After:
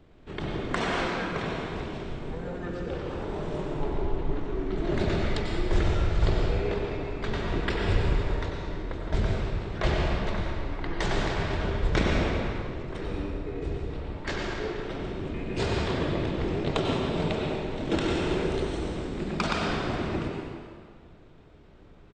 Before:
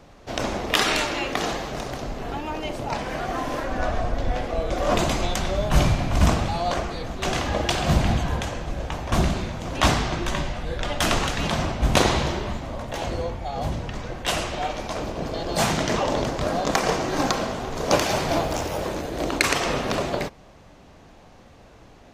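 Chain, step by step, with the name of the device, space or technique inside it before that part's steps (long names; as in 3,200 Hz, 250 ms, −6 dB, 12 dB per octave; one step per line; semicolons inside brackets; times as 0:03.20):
monster voice (pitch shifter −9.5 semitones; low-shelf EQ 190 Hz +4 dB; convolution reverb RT60 1.9 s, pre-delay 87 ms, DRR −0.5 dB)
level −8 dB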